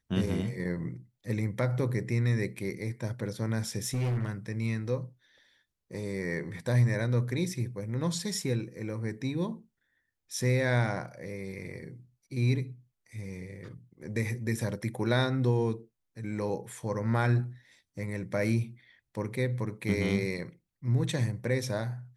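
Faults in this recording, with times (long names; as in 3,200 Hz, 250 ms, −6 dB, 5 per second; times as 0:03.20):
0:03.84–0:04.29: clipping −26.5 dBFS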